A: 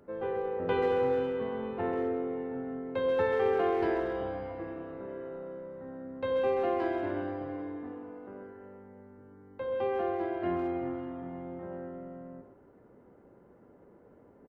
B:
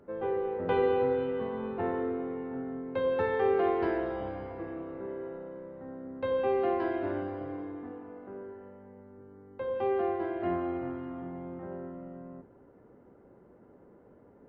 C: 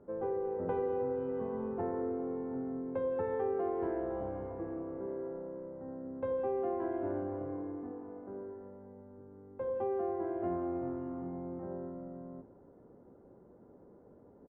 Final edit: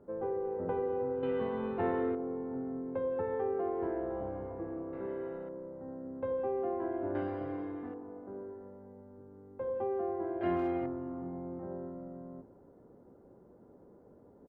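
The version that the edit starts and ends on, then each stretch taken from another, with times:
C
0:01.23–0:02.15: punch in from B
0:04.93–0:05.49: punch in from B
0:07.15–0:07.94: punch in from B
0:10.41–0:10.86: punch in from A

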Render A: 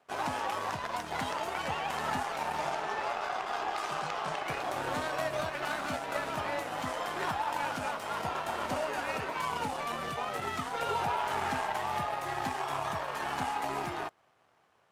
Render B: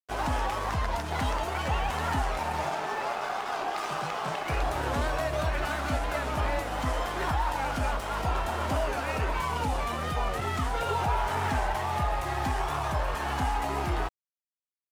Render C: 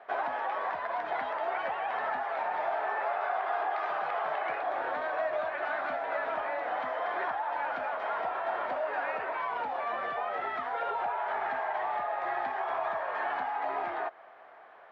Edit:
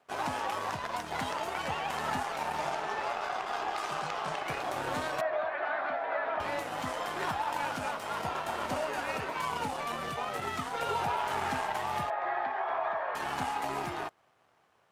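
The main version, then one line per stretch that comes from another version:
A
0:05.21–0:06.40: punch in from C
0:12.10–0:13.15: punch in from C
not used: B

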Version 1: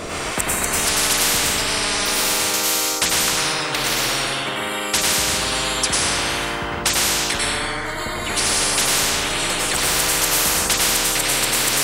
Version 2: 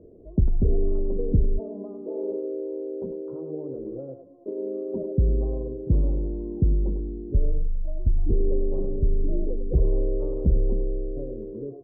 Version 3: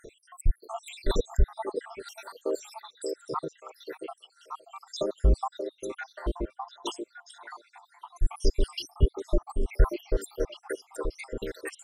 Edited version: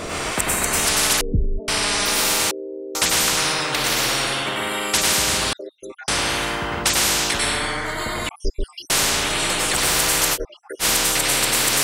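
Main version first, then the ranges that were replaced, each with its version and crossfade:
1
0:01.21–0:01.68: punch in from 2
0:02.51–0:02.95: punch in from 2
0:05.53–0:06.08: punch in from 3
0:08.29–0:08.90: punch in from 3
0:10.35–0:10.82: punch in from 3, crossfade 0.06 s

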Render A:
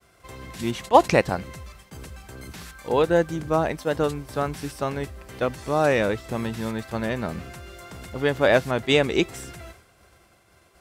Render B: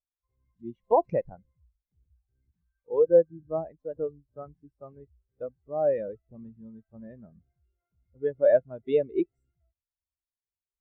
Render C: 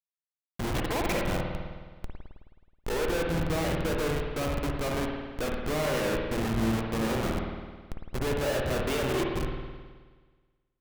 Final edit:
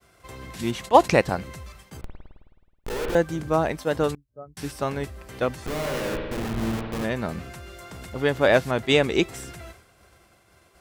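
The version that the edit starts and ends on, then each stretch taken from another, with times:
A
0:02.01–0:03.15: punch in from C
0:04.15–0:04.57: punch in from B
0:05.66–0:07.04: punch in from C

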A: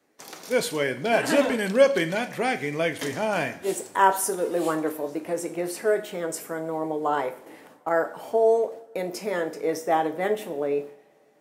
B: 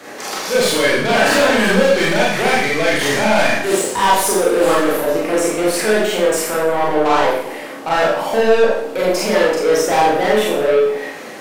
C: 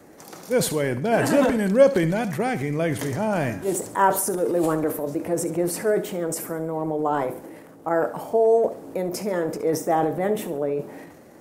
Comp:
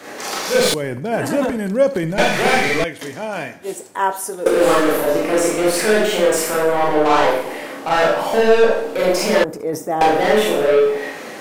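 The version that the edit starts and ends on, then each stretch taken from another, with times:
B
0:00.74–0:02.18: punch in from C
0:02.84–0:04.46: punch in from A
0:09.44–0:10.01: punch in from C

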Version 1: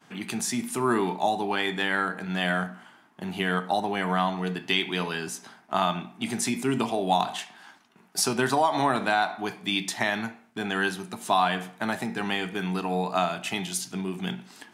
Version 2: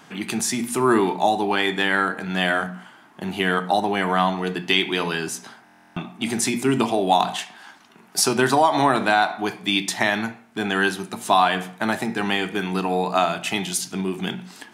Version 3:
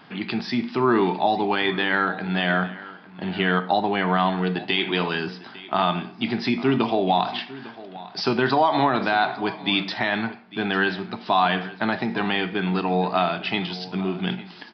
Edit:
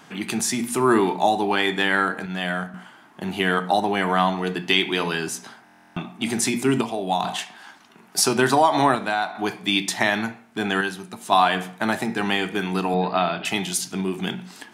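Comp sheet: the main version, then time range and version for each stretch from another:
2
0:02.26–0:02.74: punch in from 1
0:06.81–0:07.24: punch in from 1
0:08.95–0:09.35: punch in from 1
0:10.81–0:11.32: punch in from 1
0:12.94–0:13.45: punch in from 3

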